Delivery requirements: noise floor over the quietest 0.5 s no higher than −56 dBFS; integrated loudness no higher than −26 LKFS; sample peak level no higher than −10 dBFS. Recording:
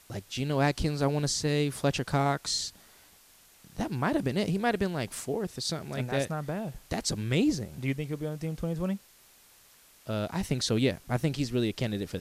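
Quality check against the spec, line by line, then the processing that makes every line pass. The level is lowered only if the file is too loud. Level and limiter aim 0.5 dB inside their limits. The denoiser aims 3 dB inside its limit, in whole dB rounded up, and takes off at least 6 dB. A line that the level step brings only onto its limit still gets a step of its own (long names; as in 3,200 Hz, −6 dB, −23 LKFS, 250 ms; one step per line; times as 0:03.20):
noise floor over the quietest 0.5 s −59 dBFS: in spec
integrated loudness −30.5 LKFS: in spec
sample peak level −12.5 dBFS: in spec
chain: no processing needed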